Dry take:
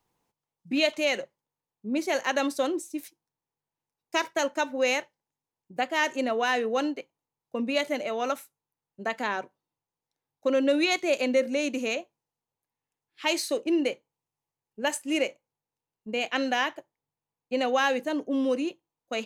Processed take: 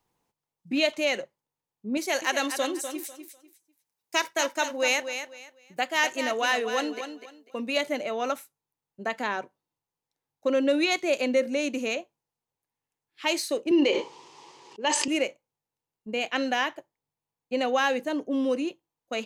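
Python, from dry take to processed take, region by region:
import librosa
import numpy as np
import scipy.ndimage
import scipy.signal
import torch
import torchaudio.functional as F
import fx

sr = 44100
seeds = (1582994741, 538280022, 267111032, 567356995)

y = fx.chain(x, sr, fx.tilt_eq(slope=2.0),
    fx.echo_feedback(ms=248, feedback_pct=24, wet_db=-9.0), at=(1.97, 7.77))
y = fx.chain(y, sr, fx.cabinet(low_hz=340.0, low_slope=12, high_hz=6600.0, hz=(370.0, 680.0, 970.0, 1500.0, 3100.0, 4800.0), db=(9, -7, 8, -7, 4, 3)),
    fx.sustainer(db_per_s=28.0), at=(13.71, 15.08))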